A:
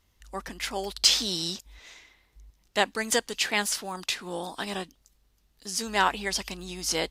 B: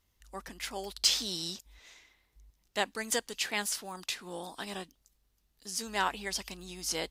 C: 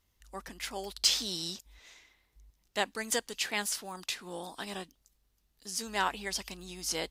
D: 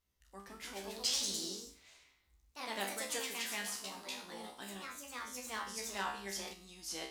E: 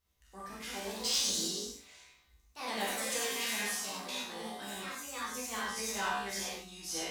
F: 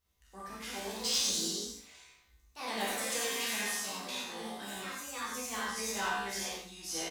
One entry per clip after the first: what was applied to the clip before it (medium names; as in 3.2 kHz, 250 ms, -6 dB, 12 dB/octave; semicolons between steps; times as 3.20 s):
treble shelf 8.5 kHz +5.5 dB; trim -7 dB
no audible change
feedback comb 66 Hz, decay 0.53 s, harmonics all, mix 90%; ever faster or slower copies 201 ms, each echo +2 st, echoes 3; trim +1 dB
saturation -29 dBFS, distortion -18 dB; gated-style reverb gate 130 ms flat, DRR -4.5 dB
delay 85 ms -9.5 dB